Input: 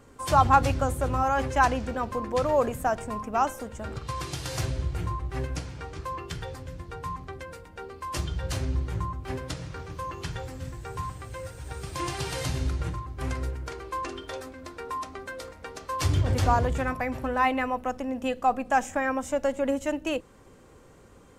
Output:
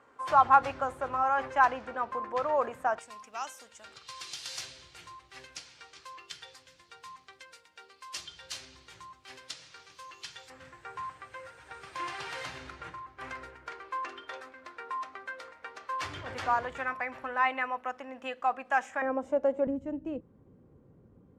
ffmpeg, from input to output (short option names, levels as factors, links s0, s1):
-af "asetnsamples=n=441:p=0,asendcmd='2.99 bandpass f 4300;10.5 bandpass f 1600;19.02 bandpass f 490;19.67 bandpass f 160',bandpass=f=1200:t=q:w=0.99:csg=0"